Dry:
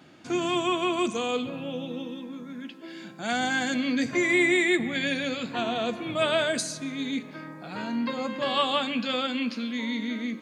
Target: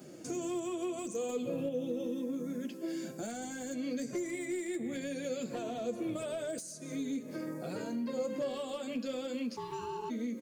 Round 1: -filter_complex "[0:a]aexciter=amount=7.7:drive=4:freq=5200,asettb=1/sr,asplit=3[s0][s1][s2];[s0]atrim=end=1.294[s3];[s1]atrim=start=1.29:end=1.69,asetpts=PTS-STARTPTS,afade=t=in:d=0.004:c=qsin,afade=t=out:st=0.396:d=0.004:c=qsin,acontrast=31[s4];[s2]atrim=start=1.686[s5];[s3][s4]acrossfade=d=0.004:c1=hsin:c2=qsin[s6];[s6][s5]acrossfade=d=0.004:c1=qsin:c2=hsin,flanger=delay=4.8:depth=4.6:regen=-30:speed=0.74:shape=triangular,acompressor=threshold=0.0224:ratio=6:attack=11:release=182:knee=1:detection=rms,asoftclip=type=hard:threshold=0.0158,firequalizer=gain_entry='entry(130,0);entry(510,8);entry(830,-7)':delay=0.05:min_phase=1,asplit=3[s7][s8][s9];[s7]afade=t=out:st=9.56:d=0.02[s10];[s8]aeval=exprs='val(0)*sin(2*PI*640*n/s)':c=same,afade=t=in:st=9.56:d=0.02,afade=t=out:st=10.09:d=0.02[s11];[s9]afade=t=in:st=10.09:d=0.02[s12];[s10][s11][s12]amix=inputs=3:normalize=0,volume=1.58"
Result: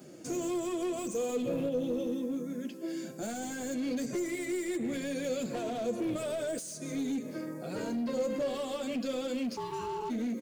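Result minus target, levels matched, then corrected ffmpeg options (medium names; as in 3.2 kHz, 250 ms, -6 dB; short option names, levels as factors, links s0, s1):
compression: peak gain reduction -5.5 dB
-filter_complex "[0:a]aexciter=amount=7.7:drive=4:freq=5200,asettb=1/sr,asplit=3[s0][s1][s2];[s0]atrim=end=1.294[s3];[s1]atrim=start=1.29:end=1.69,asetpts=PTS-STARTPTS,afade=t=in:d=0.004:c=qsin,afade=t=out:st=0.396:d=0.004:c=qsin,acontrast=31[s4];[s2]atrim=start=1.686[s5];[s3][s4]acrossfade=d=0.004:c1=hsin:c2=qsin[s6];[s6][s5]acrossfade=d=0.004:c1=qsin:c2=hsin,flanger=delay=4.8:depth=4.6:regen=-30:speed=0.74:shape=triangular,acompressor=threshold=0.0106:ratio=6:attack=11:release=182:knee=1:detection=rms,asoftclip=type=hard:threshold=0.0158,firequalizer=gain_entry='entry(130,0);entry(510,8);entry(830,-7)':delay=0.05:min_phase=1,asplit=3[s7][s8][s9];[s7]afade=t=out:st=9.56:d=0.02[s10];[s8]aeval=exprs='val(0)*sin(2*PI*640*n/s)':c=same,afade=t=in:st=9.56:d=0.02,afade=t=out:st=10.09:d=0.02[s11];[s9]afade=t=in:st=10.09:d=0.02[s12];[s10][s11][s12]amix=inputs=3:normalize=0,volume=1.58"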